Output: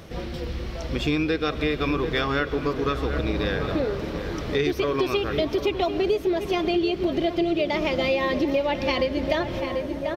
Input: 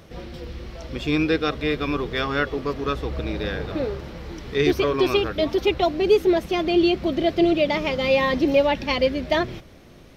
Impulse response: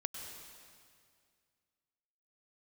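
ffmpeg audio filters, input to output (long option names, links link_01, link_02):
-filter_complex "[0:a]asplit=2[link_01][link_02];[link_02]adelay=738,lowpass=frequency=2000:poles=1,volume=-11.5dB,asplit=2[link_03][link_04];[link_04]adelay=738,lowpass=frequency=2000:poles=1,volume=0.54,asplit=2[link_05][link_06];[link_06]adelay=738,lowpass=frequency=2000:poles=1,volume=0.54,asplit=2[link_07][link_08];[link_08]adelay=738,lowpass=frequency=2000:poles=1,volume=0.54,asplit=2[link_09][link_10];[link_10]adelay=738,lowpass=frequency=2000:poles=1,volume=0.54,asplit=2[link_11][link_12];[link_12]adelay=738,lowpass=frequency=2000:poles=1,volume=0.54[link_13];[link_01][link_03][link_05][link_07][link_09][link_11][link_13]amix=inputs=7:normalize=0,asplit=2[link_14][link_15];[1:a]atrim=start_sample=2205[link_16];[link_15][link_16]afir=irnorm=-1:irlink=0,volume=-12dB[link_17];[link_14][link_17]amix=inputs=2:normalize=0,acompressor=threshold=-23dB:ratio=6,volume=2.5dB"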